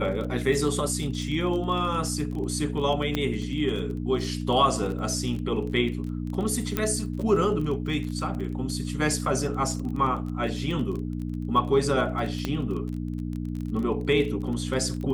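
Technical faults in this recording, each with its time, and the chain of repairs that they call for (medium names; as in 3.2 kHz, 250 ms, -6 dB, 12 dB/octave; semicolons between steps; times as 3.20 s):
crackle 26 per s -32 dBFS
hum 60 Hz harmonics 5 -31 dBFS
3.15 s: pop -12 dBFS
6.77 s: pop -10 dBFS
12.45 s: pop -14 dBFS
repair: de-click; de-hum 60 Hz, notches 5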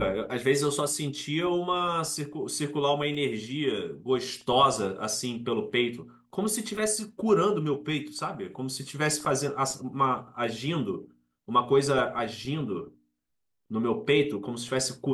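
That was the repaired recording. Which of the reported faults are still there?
3.15 s: pop
6.77 s: pop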